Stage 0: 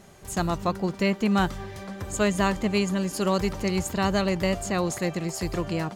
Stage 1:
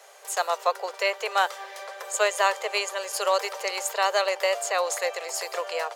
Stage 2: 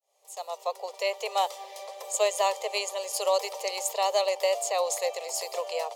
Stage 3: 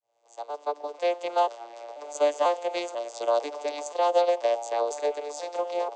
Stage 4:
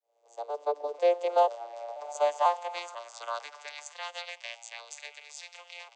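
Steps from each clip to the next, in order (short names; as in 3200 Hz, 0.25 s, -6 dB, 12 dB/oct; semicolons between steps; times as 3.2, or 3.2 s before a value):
steep high-pass 450 Hz 72 dB/oct; gain +4 dB
opening faded in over 1.22 s; fixed phaser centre 630 Hz, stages 4
arpeggiated vocoder major triad, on A#2, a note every 0.49 s; gain +3 dB
high-pass sweep 450 Hz -> 2300 Hz, 1.14–4.45; gain -4.5 dB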